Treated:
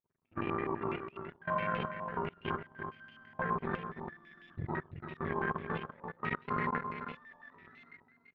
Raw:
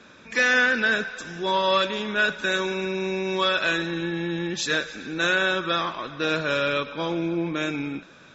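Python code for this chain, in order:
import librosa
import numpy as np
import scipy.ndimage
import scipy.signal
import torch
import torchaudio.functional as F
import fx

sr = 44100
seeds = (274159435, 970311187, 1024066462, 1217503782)

p1 = fx.octave_mirror(x, sr, pivot_hz=770.0)
p2 = fx.level_steps(p1, sr, step_db=12)
p3 = fx.power_curve(p2, sr, exponent=2.0)
p4 = p3 + fx.echo_single(p3, sr, ms=339, db=-7.5, dry=0)
p5 = fx.filter_held_lowpass(p4, sr, hz=12.0, low_hz=930.0, high_hz=2700.0)
y = F.gain(torch.from_numpy(p5), -6.5).numpy()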